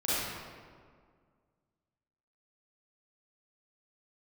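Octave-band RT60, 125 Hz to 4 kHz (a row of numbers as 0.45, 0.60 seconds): 2.1, 2.2, 2.0, 1.8, 1.4, 1.1 seconds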